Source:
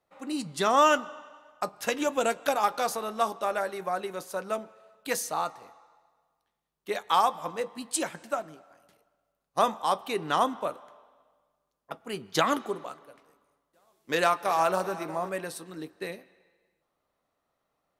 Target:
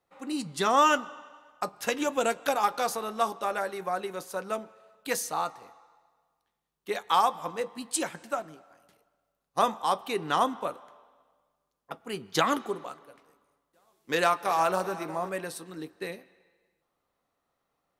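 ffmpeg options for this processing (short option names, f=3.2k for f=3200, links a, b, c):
-af "bandreject=f=620:w=12"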